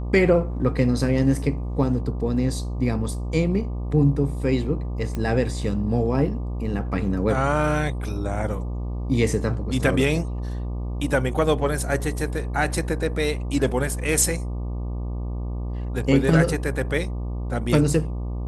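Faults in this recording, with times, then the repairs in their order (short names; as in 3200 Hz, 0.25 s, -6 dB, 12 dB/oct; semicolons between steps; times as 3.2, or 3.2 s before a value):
buzz 60 Hz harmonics 20 -28 dBFS
5.15 pop -16 dBFS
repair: de-click; de-hum 60 Hz, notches 20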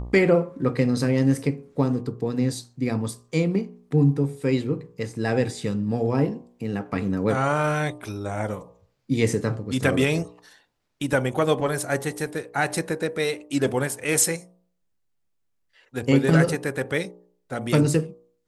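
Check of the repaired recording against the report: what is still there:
none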